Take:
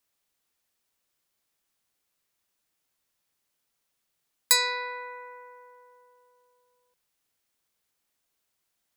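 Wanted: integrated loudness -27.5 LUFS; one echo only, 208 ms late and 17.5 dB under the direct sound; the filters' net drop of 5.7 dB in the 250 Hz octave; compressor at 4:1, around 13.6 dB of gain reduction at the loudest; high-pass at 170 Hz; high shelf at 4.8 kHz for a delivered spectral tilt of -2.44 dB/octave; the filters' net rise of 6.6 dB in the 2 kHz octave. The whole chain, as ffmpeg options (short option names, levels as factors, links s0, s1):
-af "highpass=170,equalizer=f=250:t=o:g=-8,equalizer=f=2000:t=o:g=6.5,highshelf=f=4800:g=6,acompressor=threshold=0.0398:ratio=4,aecho=1:1:208:0.133,volume=1.78"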